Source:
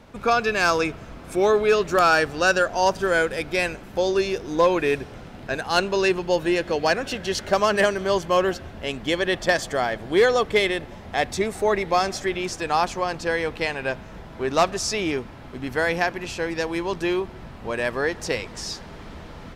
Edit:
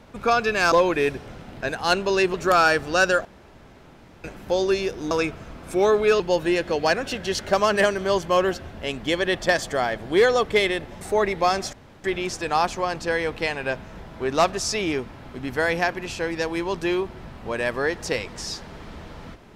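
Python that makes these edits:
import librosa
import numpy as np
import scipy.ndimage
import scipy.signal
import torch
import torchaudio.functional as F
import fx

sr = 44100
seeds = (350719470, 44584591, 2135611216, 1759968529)

y = fx.edit(x, sr, fx.swap(start_s=0.72, length_s=1.09, other_s=4.58, other_length_s=1.62),
    fx.room_tone_fill(start_s=2.72, length_s=0.99),
    fx.cut(start_s=11.01, length_s=0.5),
    fx.insert_room_tone(at_s=12.23, length_s=0.31), tone=tone)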